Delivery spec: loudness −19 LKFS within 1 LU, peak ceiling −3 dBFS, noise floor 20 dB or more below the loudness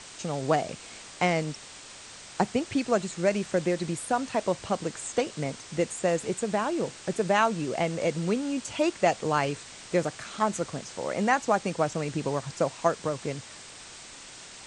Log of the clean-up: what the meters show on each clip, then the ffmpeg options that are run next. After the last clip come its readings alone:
background noise floor −46 dBFS; target noise floor −49 dBFS; integrated loudness −28.5 LKFS; sample peak −8.0 dBFS; target loudness −19.0 LKFS
→ -af "afftdn=noise_reduction=6:noise_floor=-46"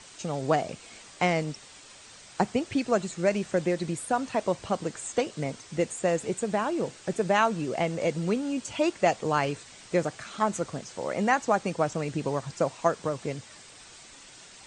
background noise floor −50 dBFS; integrated loudness −28.5 LKFS; sample peak −8.0 dBFS; target loudness −19.0 LKFS
→ -af "volume=9.5dB,alimiter=limit=-3dB:level=0:latency=1"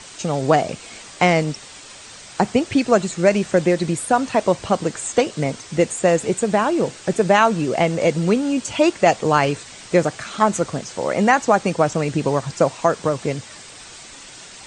integrated loudness −19.5 LKFS; sample peak −3.0 dBFS; background noise floor −41 dBFS

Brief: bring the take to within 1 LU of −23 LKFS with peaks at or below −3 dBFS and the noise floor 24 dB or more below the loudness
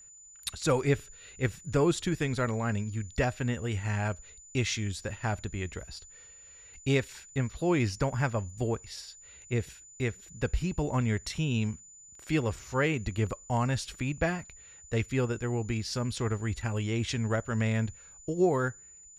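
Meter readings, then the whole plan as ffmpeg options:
interfering tone 7,000 Hz; level of the tone −50 dBFS; integrated loudness −31.0 LKFS; sample peak −13.0 dBFS; target loudness −23.0 LKFS
→ -af "bandreject=frequency=7000:width=30"
-af "volume=8dB"

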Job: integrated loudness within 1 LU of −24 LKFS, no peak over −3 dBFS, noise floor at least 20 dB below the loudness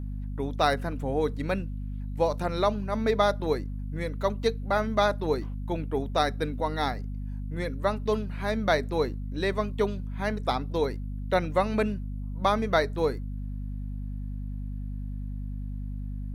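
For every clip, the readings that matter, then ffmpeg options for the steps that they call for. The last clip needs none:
mains hum 50 Hz; hum harmonics up to 250 Hz; level of the hum −31 dBFS; integrated loudness −29.5 LKFS; sample peak −9.0 dBFS; target loudness −24.0 LKFS
→ -af "bandreject=frequency=50:width_type=h:width=4,bandreject=frequency=100:width_type=h:width=4,bandreject=frequency=150:width_type=h:width=4,bandreject=frequency=200:width_type=h:width=4,bandreject=frequency=250:width_type=h:width=4"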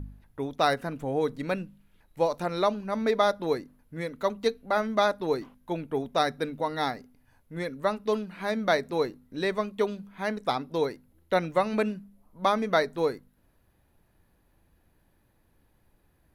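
mains hum none found; integrated loudness −29.0 LKFS; sample peak −9.0 dBFS; target loudness −24.0 LKFS
→ -af "volume=5dB"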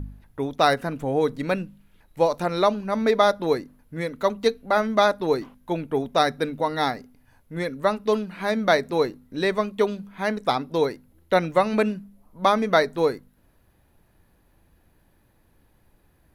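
integrated loudness −24.0 LKFS; sample peak −4.0 dBFS; background noise floor −62 dBFS

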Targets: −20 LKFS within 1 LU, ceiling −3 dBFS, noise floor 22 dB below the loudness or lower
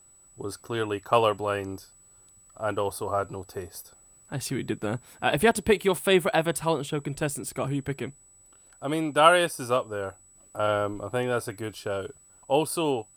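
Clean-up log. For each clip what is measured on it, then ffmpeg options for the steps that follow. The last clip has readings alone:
interfering tone 7,900 Hz; level of the tone −54 dBFS; integrated loudness −26.5 LKFS; sample peak −5.0 dBFS; target loudness −20.0 LKFS
→ -af "bandreject=frequency=7900:width=30"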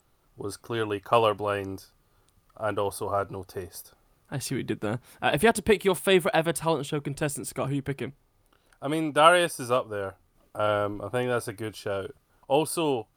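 interfering tone none found; integrated loudness −26.5 LKFS; sample peak −5.0 dBFS; target loudness −20.0 LKFS
→ -af "volume=6.5dB,alimiter=limit=-3dB:level=0:latency=1"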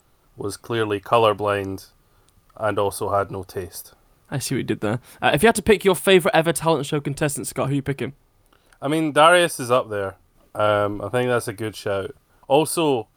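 integrated loudness −20.5 LKFS; sample peak −3.0 dBFS; background noise floor −61 dBFS

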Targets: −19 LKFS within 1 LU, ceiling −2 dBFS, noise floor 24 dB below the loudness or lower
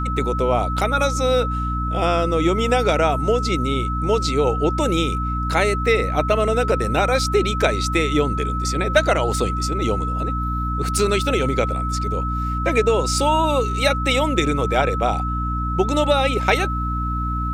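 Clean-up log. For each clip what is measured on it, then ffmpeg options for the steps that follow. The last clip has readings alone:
mains hum 60 Hz; hum harmonics up to 300 Hz; level of the hum −22 dBFS; interfering tone 1,300 Hz; level of the tone −25 dBFS; integrated loudness −20.0 LKFS; sample peak −2.0 dBFS; target loudness −19.0 LKFS
→ -af "bandreject=frequency=60:width_type=h:width=4,bandreject=frequency=120:width_type=h:width=4,bandreject=frequency=180:width_type=h:width=4,bandreject=frequency=240:width_type=h:width=4,bandreject=frequency=300:width_type=h:width=4"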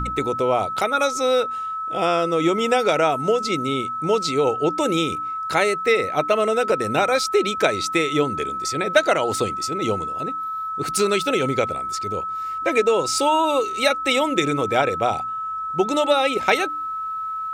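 mains hum none found; interfering tone 1,300 Hz; level of the tone −25 dBFS
→ -af "bandreject=frequency=1300:width=30"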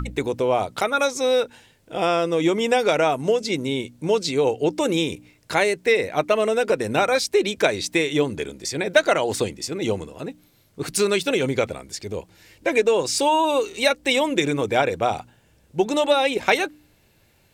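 interfering tone none found; integrated loudness −22.0 LKFS; sample peak −3.5 dBFS; target loudness −19.0 LKFS
→ -af "volume=3dB,alimiter=limit=-2dB:level=0:latency=1"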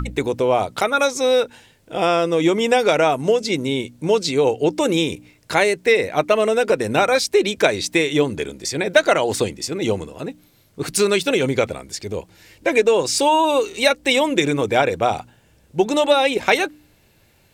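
integrated loudness −19.0 LKFS; sample peak −2.0 dBFS; background noise floor −56 dBFS

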